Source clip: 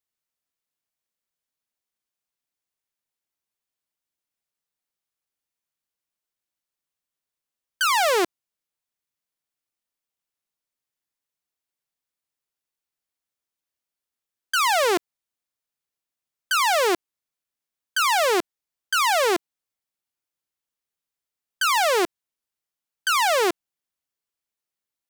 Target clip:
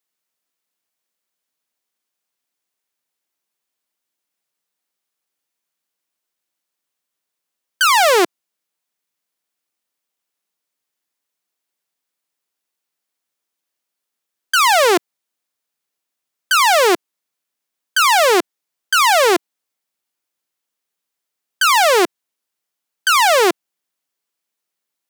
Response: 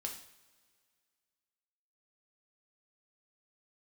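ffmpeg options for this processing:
-af "highpass=180,volume=7.5dB"

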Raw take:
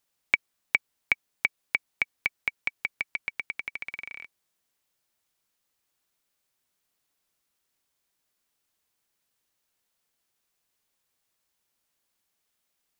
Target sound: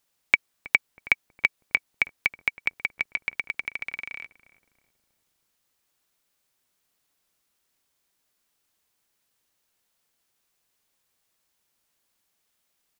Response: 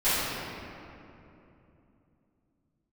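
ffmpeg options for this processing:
-filter_complex "[0:a]asplit=2[a][b];[b]adelay=321,lowpass=f=880:p=1,volume=-15dB,asplit=2[c][d];[d]adelay=321,lowpass=f=880:p=1,volume=0.53,asplit=2[e][f];[f]adelay=321,lowpass=f=880:p=1,volume=0.53,asplit=2[g][h];[h]adelay=321,lowpass=f=880:p=1,volume=0.53,asplit=2[i][j];[j]adelay=321,lowpass=f=880:p=1,volume=0.53[k];[a][c][e][g][i][k]amix=inputs=6:normalize=0,volume=3.5dB"

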